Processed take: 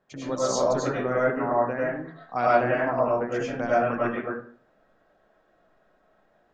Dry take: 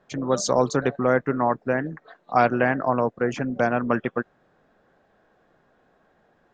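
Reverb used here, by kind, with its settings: algorithmic reverb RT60 0.48 s, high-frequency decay 0.65×, pre-delay 60 ms, DRR -7 dB; trim -9.5 dB

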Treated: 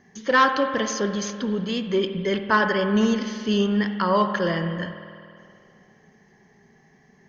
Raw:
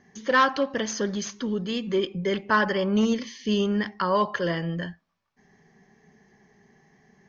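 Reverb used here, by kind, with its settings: spring tank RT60 2.5 s, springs 49 ms, chirp 50 ms, DRR 8 dB; trim +2 dB

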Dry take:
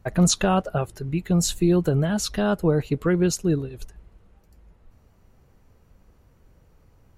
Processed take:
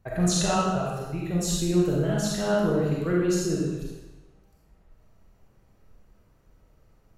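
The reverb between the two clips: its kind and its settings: algorithmic reverb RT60 1.1 s, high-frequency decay 0.95×, pre-delay 5 ms, DRR -5 dB; trim -8.5 dB

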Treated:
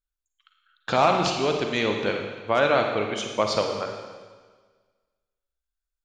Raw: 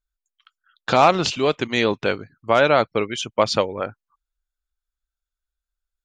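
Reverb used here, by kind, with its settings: Schroeder reverb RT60 1.5 s, DRR 3 dB; trim -5.5 dB

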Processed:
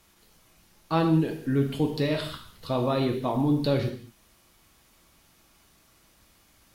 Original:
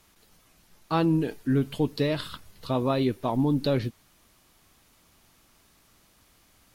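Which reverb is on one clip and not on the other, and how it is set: gated-style reverb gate 240 ms falling, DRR 3 dB; trim -1 dB

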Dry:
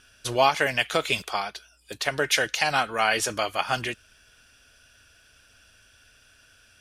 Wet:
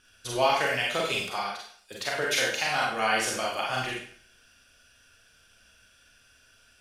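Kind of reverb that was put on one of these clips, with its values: Schroeder reverb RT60 0.54 s, combs from 32 ms, DRR -3 dB; trim -7 dB

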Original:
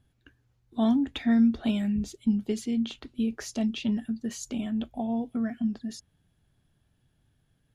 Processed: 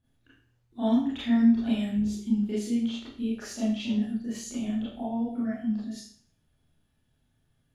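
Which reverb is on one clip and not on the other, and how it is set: Schroeder reverb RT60 0.5 s, combs from 26 ms, DRR -9.5 dB; trim -10.5 dB

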